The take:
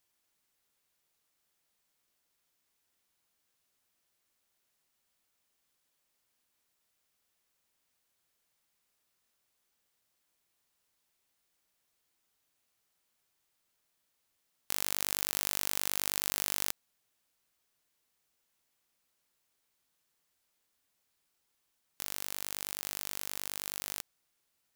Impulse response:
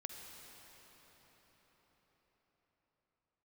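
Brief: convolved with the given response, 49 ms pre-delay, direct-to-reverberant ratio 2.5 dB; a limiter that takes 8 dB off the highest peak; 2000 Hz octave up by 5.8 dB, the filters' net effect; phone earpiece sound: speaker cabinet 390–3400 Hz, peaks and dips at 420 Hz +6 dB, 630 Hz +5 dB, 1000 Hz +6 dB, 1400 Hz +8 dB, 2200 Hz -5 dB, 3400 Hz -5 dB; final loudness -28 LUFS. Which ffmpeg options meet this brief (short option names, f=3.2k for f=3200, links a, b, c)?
-filter_complex "[0:a]equalizer=f=2k:t=o:g=6.5,alimiter=limit=-12.5dB:level=0:latency=1,asplit=2[a][b];[1:a]atrim=start_sample=2205,adelay=49[c];[b][c]afir=irnorm=-1:irlink=0,volume=0dB[d];[a][d]amix=inputs=2:normalize=0,highpass=390,equalizer=f=420:t=q:w=4:g=6,equalizer=f=630:t=q:w=4:g=5,equalizer=f=1k:t=q:w=4:g=6,equalizer=f=1.4k:t=q:w=4:g=8,equalizer=f=2.2k:t=q:w=4:g=-5,equalizer=f=3.4k:t=q:w=4:g=-5,lowpass=f=3.4k:w=0.5412,lowpass=f=3.4k:w=1.3066,volume=16dB"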